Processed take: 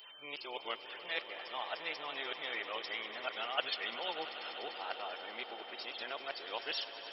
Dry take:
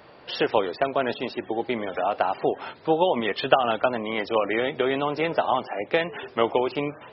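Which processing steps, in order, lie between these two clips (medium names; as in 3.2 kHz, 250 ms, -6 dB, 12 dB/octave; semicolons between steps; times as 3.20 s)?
reverse the whole clip; whistle 3.1 kHz -46 dBFS; differentiator; echo with a slow build-up 98 ms, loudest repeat 5, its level -15 dB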